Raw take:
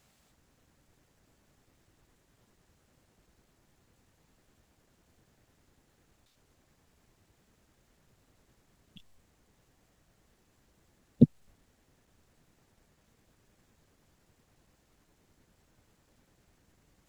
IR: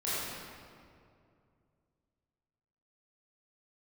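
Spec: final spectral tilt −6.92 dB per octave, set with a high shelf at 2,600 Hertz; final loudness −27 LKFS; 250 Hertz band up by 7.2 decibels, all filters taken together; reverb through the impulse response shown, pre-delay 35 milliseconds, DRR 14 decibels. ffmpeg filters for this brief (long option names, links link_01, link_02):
-filter_complex "[0:a]equalizer=frequency=250:width_type=o:gain=8,highshelf=frequency=2600:gain=-4,asplit=2[link_01][link_02];[1:a]atrim=start_sample=2205,adelay=35[link_03];[link_02][link_03]afir=irnorm=-1:irlink=0,volume=-21.5dB[link_04];[link_01][link_04]amix=inputs=2:normalize=0,volume=-3dB"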